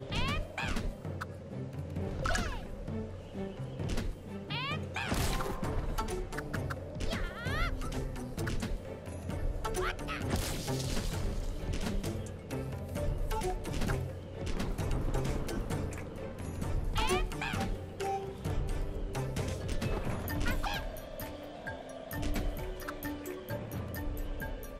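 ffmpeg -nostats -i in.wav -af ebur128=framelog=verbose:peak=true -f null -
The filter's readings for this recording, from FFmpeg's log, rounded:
Integrated loudness:
  I:         -37.2 LUFS
  Threshold: -47.2 LUFS
Loudness range:
  LRA:         2.6 LU
  Threshold: -57.1 LUFS
  LRA low:   -38.5 LUFS
  LRA high:  -36.0 LUFS
True peak:
  Peak:      -16.1 dBFS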